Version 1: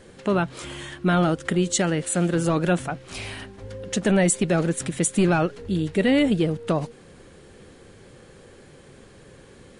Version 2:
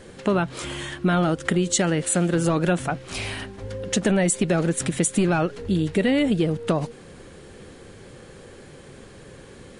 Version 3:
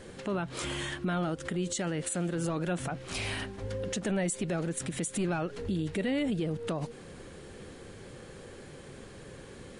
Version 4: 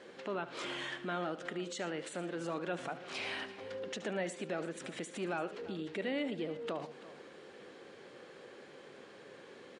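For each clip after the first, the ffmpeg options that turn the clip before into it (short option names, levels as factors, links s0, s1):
-af "acompressor=threshold=0.0891:ratio=6,volume=1.58"
-af "alimiter=limit=0.0944:level=0:latency=1:release=122,volume=0.708"
-filter_complex "[0:a]highpass=330,lowpass=4500,asplit=2[s0][s1];[s1]aecho=0:1:73|115|337:0.188|0.119|0.141[s2];[s0][s2]amix=inputs=2:normalize=0,volume=0.708"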